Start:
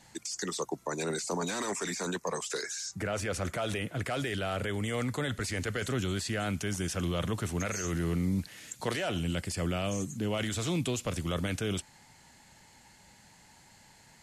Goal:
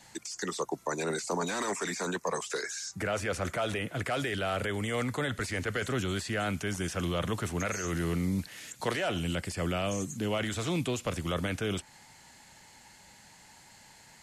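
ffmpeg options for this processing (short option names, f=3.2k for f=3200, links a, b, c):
-filter_complex "[0:a]lowshelf=f=390:g=-5,acrossover=split=500|2400[a][b][c];[c]alimiter=level_in=11dB:limit=-24dB:level=0:latency=1:release=130,volume=-11dB[d];[a][b][d]amix=inputs=3:normalize=0,volume=3.5dB"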